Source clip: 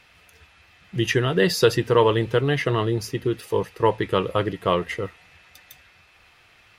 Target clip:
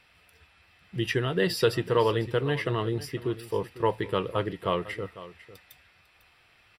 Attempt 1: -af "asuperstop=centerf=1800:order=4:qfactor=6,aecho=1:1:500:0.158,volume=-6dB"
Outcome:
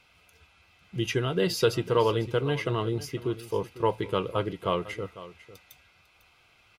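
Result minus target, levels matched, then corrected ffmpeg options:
8000 Hz band +3.0 dB
-af "asuperstop=centerf=6500:order=4:qfactor=6,aecho=1:1:500:0.158,volume=-6dB"

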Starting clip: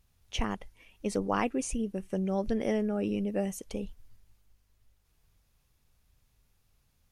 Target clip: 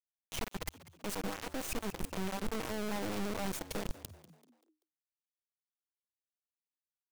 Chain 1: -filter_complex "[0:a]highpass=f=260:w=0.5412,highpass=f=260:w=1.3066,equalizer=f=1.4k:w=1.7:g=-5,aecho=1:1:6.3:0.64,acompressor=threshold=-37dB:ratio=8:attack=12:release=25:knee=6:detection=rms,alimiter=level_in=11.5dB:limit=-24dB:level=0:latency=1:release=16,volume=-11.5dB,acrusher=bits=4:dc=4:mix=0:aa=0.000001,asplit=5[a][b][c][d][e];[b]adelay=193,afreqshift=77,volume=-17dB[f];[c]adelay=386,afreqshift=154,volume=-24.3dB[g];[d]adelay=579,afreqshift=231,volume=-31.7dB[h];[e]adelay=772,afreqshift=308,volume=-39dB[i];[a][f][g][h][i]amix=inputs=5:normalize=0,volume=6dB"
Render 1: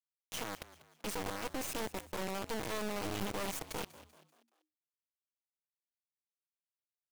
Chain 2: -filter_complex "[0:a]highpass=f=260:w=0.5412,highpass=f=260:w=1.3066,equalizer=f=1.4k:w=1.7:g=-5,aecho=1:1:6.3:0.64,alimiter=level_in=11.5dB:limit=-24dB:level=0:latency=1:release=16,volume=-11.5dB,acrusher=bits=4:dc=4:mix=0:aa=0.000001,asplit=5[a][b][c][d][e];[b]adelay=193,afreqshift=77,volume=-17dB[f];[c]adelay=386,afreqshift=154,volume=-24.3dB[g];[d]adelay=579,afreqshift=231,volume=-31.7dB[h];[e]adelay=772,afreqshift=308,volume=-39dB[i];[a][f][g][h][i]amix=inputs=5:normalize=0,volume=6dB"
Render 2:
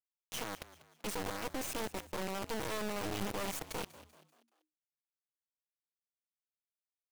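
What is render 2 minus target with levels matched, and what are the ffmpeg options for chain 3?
250 Hz band -3.0 dB
-filter_complex "[0:a]equalizer=f=1.4k:w=1.7:g=-5,aecho=1:1:6.3:0.64,alimiter=level_in=11.5dB:limit=-24dB:level=0:latency=1:release=16,volume=-11.5dB,acrusher=bits=4:dc=4:mix=0:aa=0.000001,asplit=5[a][b][c][d][e];[b]adelay=193,afreqshift=77,volume=-17dB[f];[c]adelay=386,afreqshift=154,volume=-24.3dB[g];[d]adelay=579,afreqshift=231,volume=-31.7dB[h];[e]adelay=772,afreqshift=308,volume=-39dB[i];[a][f][g][h][i]amix=inputs=5:normalize=0,volume=6dB"

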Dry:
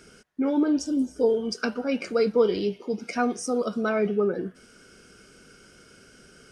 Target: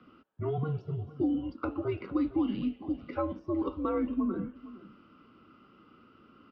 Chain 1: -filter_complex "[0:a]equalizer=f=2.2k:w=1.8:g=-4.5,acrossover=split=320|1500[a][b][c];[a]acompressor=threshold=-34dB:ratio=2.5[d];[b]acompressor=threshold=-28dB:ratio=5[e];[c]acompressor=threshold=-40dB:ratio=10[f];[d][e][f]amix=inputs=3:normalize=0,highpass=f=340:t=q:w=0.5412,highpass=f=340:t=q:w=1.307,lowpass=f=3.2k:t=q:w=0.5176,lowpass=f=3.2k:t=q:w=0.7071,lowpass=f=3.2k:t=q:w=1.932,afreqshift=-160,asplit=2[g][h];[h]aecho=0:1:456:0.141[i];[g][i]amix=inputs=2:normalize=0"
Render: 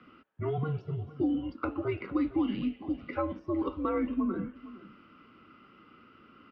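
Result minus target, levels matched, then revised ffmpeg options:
2000 Hz band +4.5 dB
-filter_complex "[0:a]equalizer=f=2.2k:w=1.8:g=-13.5,acrossover=split=320|1500[a][b][c];[a]acompressor=threshold=-34dB:ratio=2.5[d];[b]acompressor=threshold=-28dB:ratio=5[e];[c]acompressor=threshold=-40dB:ratio=10[f];[d][e][f]amix=inputs=3:normalize=0,highpass=f=340:t=q:w=0.5412,highpass=f=340:t=q:w=1.307,lowpass=f=3.2k:t=q:w=0.5176,lowpass=f=3.2k:t=q:w=0.7071,lowpass=f=3.2k:t=q:w=1.932,afreqshift=-160,asplit=2[g][h];[h]aecho=0:1:456:0.141[i];[g][i]amix=inputs=2:normalize=0"

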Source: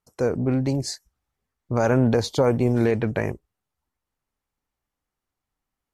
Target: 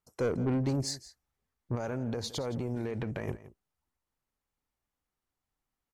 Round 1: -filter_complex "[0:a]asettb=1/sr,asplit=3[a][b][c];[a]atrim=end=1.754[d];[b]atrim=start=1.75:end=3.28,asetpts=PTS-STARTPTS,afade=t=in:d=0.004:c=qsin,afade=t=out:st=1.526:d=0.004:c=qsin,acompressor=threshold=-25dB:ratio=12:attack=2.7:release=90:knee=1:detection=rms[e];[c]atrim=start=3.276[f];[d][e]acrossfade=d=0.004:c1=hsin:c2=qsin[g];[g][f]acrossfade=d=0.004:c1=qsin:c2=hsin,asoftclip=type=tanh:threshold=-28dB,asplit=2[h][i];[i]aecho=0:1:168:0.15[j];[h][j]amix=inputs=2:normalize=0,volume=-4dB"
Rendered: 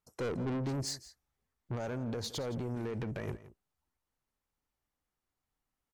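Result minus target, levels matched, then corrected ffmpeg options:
soft clip: distortion +7 dB
-filter_complex "[0:a]asettb=1/sr,asplit=3[a][b][c];[a]atrim=end=1.754[d];[b]atrim=start=1.75:end=3.28,asetpts=PTS-STARTPTS,afade=t=in:d=0.004:c=qsin,afade=t=out:st=1.526:d=0.004:c=qsin,acompressor=threshold=-25dB:ratio=12:attack=2.7:release=90:knee=1:detection=rms[e];[c]atrim=start=3.276[f];[d][e]acrossfade=d=0.004:c1=hsin:c2=qsin[g];[g][f]acrossfade=d=0.004:c1=qsin:c2=hsin,asoftclip=type=tanh:threshold=-19.5dB,asplit=2[h][i];[i]aecho=0:1:168:0.15[j];[h][j]amix=inputs=2:normalize=0,volume=-4dB"

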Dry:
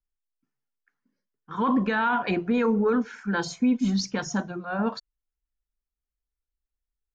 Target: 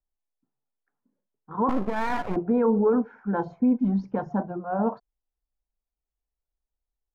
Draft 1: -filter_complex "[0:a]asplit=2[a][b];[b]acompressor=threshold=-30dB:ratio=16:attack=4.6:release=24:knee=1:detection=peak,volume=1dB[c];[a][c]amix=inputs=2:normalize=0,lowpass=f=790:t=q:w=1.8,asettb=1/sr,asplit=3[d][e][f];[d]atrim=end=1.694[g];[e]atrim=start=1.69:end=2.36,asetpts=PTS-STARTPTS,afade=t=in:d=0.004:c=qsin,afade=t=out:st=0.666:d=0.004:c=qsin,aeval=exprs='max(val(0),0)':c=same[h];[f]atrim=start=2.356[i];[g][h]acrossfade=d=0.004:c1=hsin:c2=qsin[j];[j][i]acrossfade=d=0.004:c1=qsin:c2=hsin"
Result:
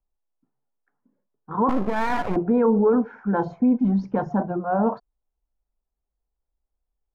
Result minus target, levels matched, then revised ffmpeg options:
compressor: peak gain reduction +12 dB
-filter_complex "[0:a]lowpass=f=790:t=q:w=1.8,asettb=1/sr,asplit=3[a][b][c];[a]atrim=end=1.694[d];[b]atrim=start=1.69:end=2.36,asetpts=PTS-STARTPTS,afade=t=in:d=0.004:c=qsin,afade=t=out:st=0.666:d=0.004:c=qsin,aeval=exprs='max(val(0),0)':c=same[e];[c]atrim=start=2.356[f];[d][e]acrossfade=d=0.004:c1=hsin:c2=qsin[g];[g][f]acrossfade=d=0.004:c1=qsin:c2=hsin"

